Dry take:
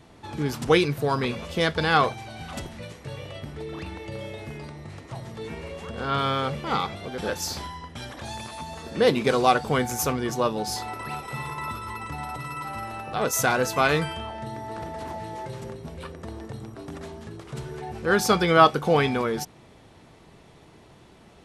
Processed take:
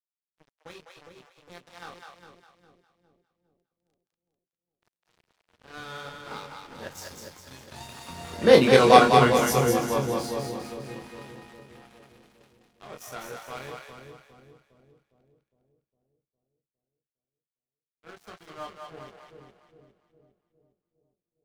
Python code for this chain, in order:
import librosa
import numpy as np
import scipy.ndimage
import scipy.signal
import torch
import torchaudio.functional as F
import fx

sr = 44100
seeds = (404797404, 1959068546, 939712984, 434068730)

p1 = fx.doppler_pass(x, sr, speed_mps=21, closest_m=10.0, pass_at_s=8.75)
p2 = fx.room_early_taps(p1, sr, ms=(23, 44), db=(-4.0, -10.0))
p3 = np.sign(p2) * np.maximum(np.abs(p2) - 10.0 ** (-45.0 / 20.0), 0.0)
p4 = p3 + fx.echo_split(p3, sr, split_hz=520.0, low_ms=408, high_ms=203, feedback_pct=52, wet_db=-4.0, dry=0)
y = p4 * 10.0 ** (3.0 / 20.0)